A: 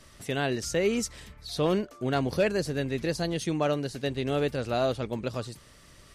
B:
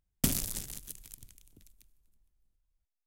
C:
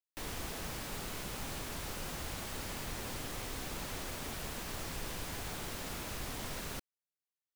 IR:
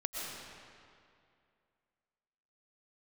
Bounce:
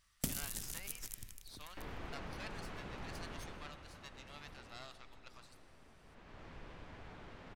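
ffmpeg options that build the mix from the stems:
-filter_complex "[0:a]highpass=f=980:w=0.5412,highpass=f=980:w=1.3066,aeval=exprs='0.133*(cos(1*acos(clip(val(0)/0.133,-1,1)))-cos(1*PI/2))+0.0531*(cos(4*acos(clip(val(0)/0.133,-1,1)))-cos(4*PI/2))':c=same,volume=-19.5dB,asplit=2[a][b];[b]volume=-13.5dB[c];[1:a]acompressor=threshold=-43dB:ratio=2.5,volume=2.5dB[d];[2:a]lowpass=2.4k,adelay=1600,volume=4.5dB,afade=t=out:st=3.29:d=0.49:silence=0.334965,afade=t=out:st=4.58:d=0.31:silence=0.446684,afade=t=in:st=6.03:d=0.45:silence=0.298538,asplit=2[e][f];[f]volume=-11dB[g];[3:a]atrim=start_sample=2205[h];[c][g]amix=inputs=2:normalize=0[i];[i][h]afir=irnorm=-1:irlink=0[j];[a][d][e][j]amix=inputs=4:normalize=0"

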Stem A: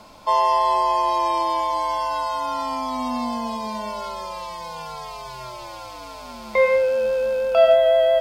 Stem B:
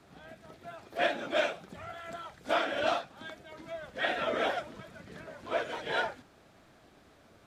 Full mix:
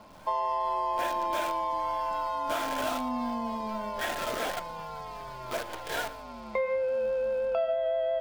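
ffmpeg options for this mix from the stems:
-filter_complex "[0:a]lowpass=f=1.7k:p=1,volume=-4.5dB[a];[1:a]acrusher=bits=6:dc=4:mix=0:aa=0.000001,volume=-2dB,asplit=2[b][c];[c]volume=-20.5dB,aecho=0:1:117:1[d];[a][b][d]amix=inputs=3:normalize=0,acompressor=threshold=-26dB:ratio=6"

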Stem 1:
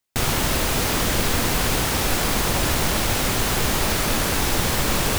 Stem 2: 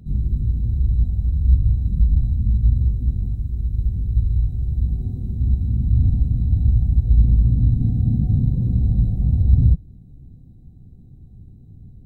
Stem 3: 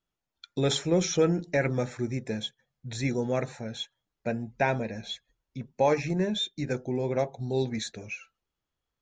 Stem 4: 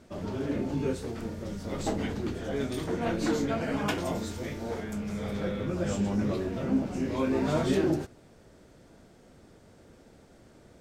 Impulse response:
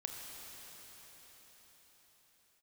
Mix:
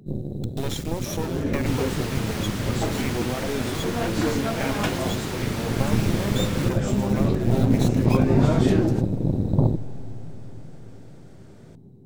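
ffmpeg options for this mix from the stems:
-filter_complex "[0:a]asplit=2[a][b];[b]highpass=f=720:p=1,volume=18dB,asoftclip=type=tanh:threshold=-6dB[c];[a][c]amix=inputs=2:normalize=0,lowpass=f=4.3k:p=1,volume=-6dB,adelay=1500,volume=-18.5dB[d];[1:a]highpass=f=130:w=0.5412,highpass=f=130:w=1.3066,equalizer=f=390:t=o:w=0.45:g=14,aeval=exprs='0.282*(cos(1*acos(clip(val(0)/0.282,-1,1)))-cos(1*PI/2))+0.0631*(cos(6*acos(clip(val(0)/0.282,-1,1)))-cos(6*PI/2))+0.0112*(cos(7*acos(clip(val(0)/0.282,-1,1)))-cos(7*PI/2))':c=same,volume=0dB,asplit=2[e][f];[f]volume=-9dB[g];[2:a]equalizer=f=100:t=o:w=0.99:g=-7.5,acompressor=threshold=-28dB:ratio=6,acrusher=bits=4:dc=4:mix=0:aa=0.000001,volume=2.5dB,asplit=2[h][i];[i]volume=-9.5dB[j];[3:a]adelay=950,volume=2.5dB,asplit=2[k][l];[l]volume=-21.5dB[m];[4:a]atrim=start_sample=2205[n];[g][j][m]amix=inputs=3:normalize=0[o];[o][n]afir=irnorm=-1:irlink=0[p];[d][e][h][k][p]amix=inputs=5:normalize=0"

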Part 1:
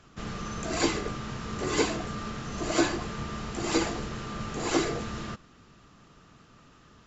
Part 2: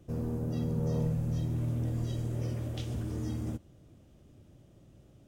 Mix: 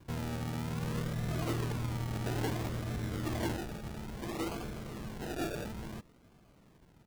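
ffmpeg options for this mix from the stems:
-filter_complex "[0:a]lowpass=f=1.2k:w=0.5412,lowpass=f=1.2k:w=1.3066,asoftclip=type=tanh:threshold=-25.5dB,adelay=650,volume=-5dB[a];[1:a]acompressor=threshold=-33dB:ratio=6,volume=0dB[b];[a][b]amix=inputs=2:normalize=0,acrusher=samples=33:mix=1:aa=0.000001:lfo=1:lforange=19.8:lforate=0.59"

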